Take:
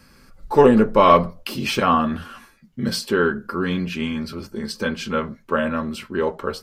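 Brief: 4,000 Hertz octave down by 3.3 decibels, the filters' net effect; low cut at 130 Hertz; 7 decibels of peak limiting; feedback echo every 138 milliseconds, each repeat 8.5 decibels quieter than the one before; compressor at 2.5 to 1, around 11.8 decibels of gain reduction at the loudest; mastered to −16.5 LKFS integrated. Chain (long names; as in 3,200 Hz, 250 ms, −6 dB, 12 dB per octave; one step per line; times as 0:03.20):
high-pass filter 130 Hz
parametric band 4,000 Hz −4.5 dB
downward compressor 2.5 to 1, threshold −26 dBFS
brickwall limiter −19.5 dBFS
repeating echo 138 ms, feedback 38%, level −8.5 dB
level +14 dB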